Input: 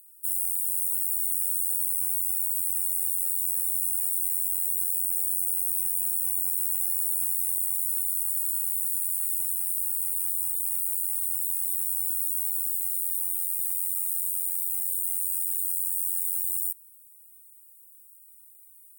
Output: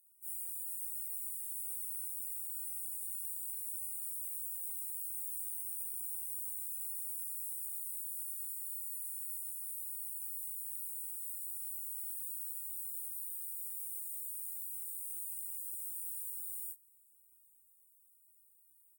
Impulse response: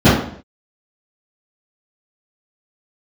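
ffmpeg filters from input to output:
-filter_complex "[0:a]flanger=delay=19.5:depth=3.3:speed=0.43,lowshelf=frequency=360:gain=3,asplit=2[link_01][link_02];[link_02]adelay=1131,lowpass=frequency=2000:poles=1,volume=-19dB,asplit=2[link_03][link_04];[link_04]adelay=1131,lowpass=frequency=2000:poles=1,volume=0.49,asplit=2[link_05][link_06];[link_06]adelay=1131,lowpass=frequency=2000:poles=1,volume=0.49,asplit=2[link_07][link_08];[link_08]adelay=1131,lowpass=frequency=2000:poles=1,volume=0.49[link_09];[link_01][link_03][link_05][link_07][link_09]amix=inputs=5:normalize=0,afftfilt=real='re*1.73*eq(mod(b,3),0)':imag='im*1.73*eq(mod(b,3),0)':win_size=2048:overlap=0.75,volume=-8dB"

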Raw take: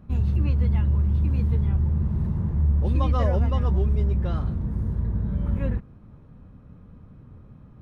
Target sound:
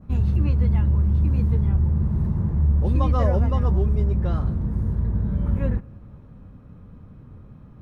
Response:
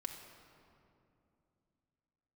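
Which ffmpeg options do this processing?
-filter_complex "[0:a]adynamicequalizer=threshold=0.00178:dfrequency=3100:dqfactor=1.1:tfrequency=3100:tqfactor=1.1:attack=5:release=100:ratio=0.375:range=3:mode=cutabove:tftype=bell,asplit=2[link_01][link_02];[1:a]atrim=start_sample=2205,adelay=20[link_03];[link_02][link_03]afir=irnorm=-1:irlink=0,volume=-17dB[link_04];[link_01][link_04]amix=inputs=2:normalize=0,volume=2.5dB"

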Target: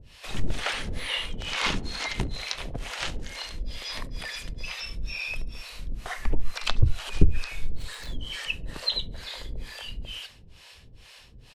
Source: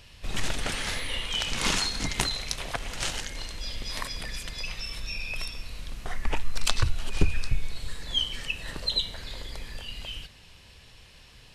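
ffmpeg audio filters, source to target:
ffmpeg -i in.wav -filter_complex "[0:a]asettb=1/sr,asplit=3[link_01][link_02][link_03];[link_01]atrim=end=7.624[link_04];[link_02]atrim=start=7.62:end=8.19,asetpts=PTS-STARTPTS,afade=type=in:duration=0.004:curve=qsin,afade=type=out:start_time=0.566:duration=0.004:curve=qsin,aeval=exprs='val(0)+0.5*0.00841*sgn(val(0))':channel_layout=same[link_05];[link_03]atrim=start=8.186[link_06];[link_04][link_05]acrossfade=duration=0.004:curve1=hsin:curve2=qsin[link_07];[link_07][link_06]acrossfade=duration=0.004:curve1=qsin:curve2=hsin,acrossover=split=480[link_08][link_09];[link_08]aeval=exprs='val(0)*(1-1/2+1/2*cos(2*PI*2.2*n/s))':channel_layout=same[link_10];[link_09]aeval=exprs='val(0)*(1-1/2-1/2*cos(2*PI*2.2*n/s))':channel_layout=same[link_11];[link_10][link_11]amix=inputs=2:normalize=0,acrossover=split=4600[link_12][link_13];[link_13]acompressor=threshold=-49dB:ratio=4:attack=1:release=60[link_14];[link_12][link_14]amix=inputs=2:normalize=0,asplit=2[link_15][link_16];[link_16]adelay=69,lowpass=frequency=3200:poles=1,volume=-24dB,asplit=2[link_17][link_18];[link_18]adelay=69,lowpass=frequency=3200:poles=1,volume=0.32[link_19];[link_17][link_19]amix=inputs=2:normalize=0[link_20];[link_15][link_20]amix=inputs=2:normalize=0,volume=5.5dB" out.wav

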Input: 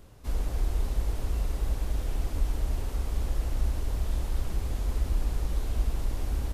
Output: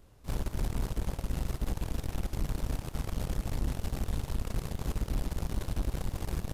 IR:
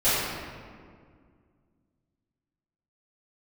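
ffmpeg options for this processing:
-af "aeval=exprs='0.178*(cos(1*acos(clip(val(0)/0.178,-1,1)))-cos(1*PI/2))+0.0224*(cos(3*acos(clip(val(0)/0.178,-1,1)))-cos(3*PI/2))+0.0224*(cos(4*acos(clip(val(0)/0.178,-1,1)))-cos(4*PI/2))+0.0158*(cos(5*acos(clip(val(0)/0.178,-1,1)))-cos(5*PI/2))+0.0398*(cos(7*acos(clip(val(0)/0.178,-1,1)))-cos(7*PI/2))':channel_layout=same,volume=24dB,asoftclip=hard,volume=-24dB"

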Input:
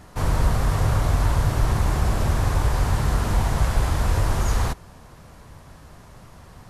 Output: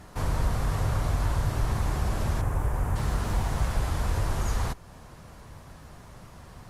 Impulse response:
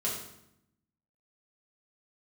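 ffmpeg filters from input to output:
-filter_complex "[0:a]asettb=1/sr,asplit=3[link_01][link_02][link_03];[link_01]atrim=end=2.414[link_04];[link_02]atrim=start=2.41:end=2.96,asetpts=PTS-STARTPTS,afade=type=in:duration=0.004:curve=qsin,afade=type=out:start_time=0.546:duration=0.004:curve=qsin,equalizer=frequency=4300:width=1:gain=-15[link_05];[link_03]atrim=start=2.956[link_06];[link_04][link_05]acrossfade=duration=0.004:curve1=hsin:curve2=qsin[link_07];[link_07][link_06]acrossfade=duration=0.004:curve1=qsin:curve2=hsin,asplit=2[link_08][link_09];[link_09]acompressor=threshold=-33dB:ratio=6,volume=0dB[link_10];[link_08][link_10]amix=inputs=2:normalize=0,volume=-7.5dB" -ar 48000 -c:a libopus -b:a 48k

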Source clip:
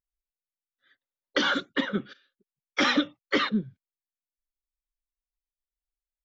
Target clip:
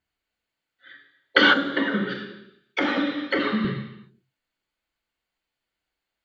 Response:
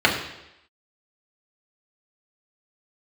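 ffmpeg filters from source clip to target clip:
-filter_complex "[0:a]acompressor=threshold=-32dB:ratio=5[link_01];[1:a]atrim=start_sample=2205[link_02];[link_01][link_02]afir=irnorm=-1:irlink=0,asettb=1/sr,asplit=3[link_03][link_04][link_05];[link_03]atrim=end=1.534[link_06];[link_04]atrim=start=1.53:end=3.65,asetpts=PTS-STARTPTS,afade=type=in:duration=0.004:curve=qsin,afade=type=out:start_time=2.116:duration=0.004:curve=qsin,acrossover=split=540|1100|4200[link_07][link_08][link_09][link_10];[link_07]acompressor=threshold=-22dB:ratio=4[link_11];[link_08]acompressor=threshold=-28dB:ratio=4[link_12];[link_09]acompressor=threshold=-28dB:ratio=4[link_13];[link_10]acompressor=threshold=-42dB:ratio=4[link_14];[link_11][link_12][link_13][link_14]amix=inputs=4:normalize=0[link_15];[link_05]atrim=start=3.646[link_16];[link_06][link_15]acrossfade=duration=0.004:curve1=hsin:curve2=qsin[link_17];[link_17][link_16]acrossfade=duration=0.004:curve1=qsin:curve2=hsin,volume=-2.5dB"

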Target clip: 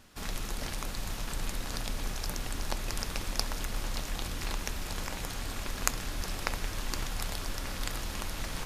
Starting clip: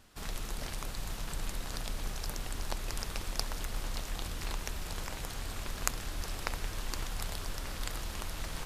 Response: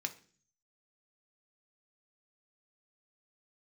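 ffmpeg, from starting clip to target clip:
-filter_complex "[0:a]asplit=2[link_01][link_02];[1:a]atrim=start_sample=2205,lowshelf=frequency=260:gain=9[link_03];[link_02][link_03]afir=irnorm=-1:irlink=0,volume=-6.5dB[link_04];[link_01][link_04]amix=inputs=2:normalize=0"

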